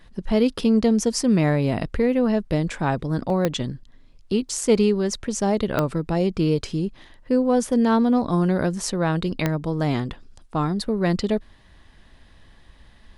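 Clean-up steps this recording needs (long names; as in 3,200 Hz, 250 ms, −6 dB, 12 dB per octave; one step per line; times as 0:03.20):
click removal
repair the gap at 0:03.30/0:04.49, 1.4 ms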